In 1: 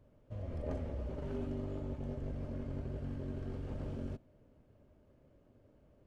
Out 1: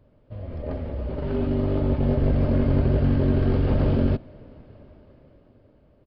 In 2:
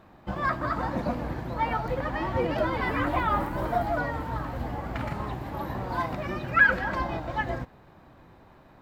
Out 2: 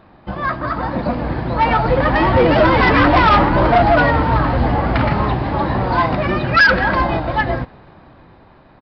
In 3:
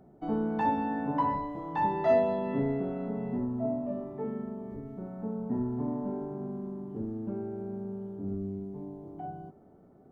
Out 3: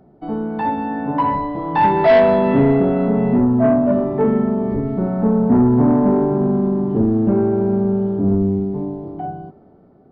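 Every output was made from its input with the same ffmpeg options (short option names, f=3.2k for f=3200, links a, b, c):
-af "dynaudnorm=f=250:g=13:m=14.5dB,aresample=11025,asoftclip=type=tanh:threshold=-13.5dB,aresample=44100,volume=6.5dB"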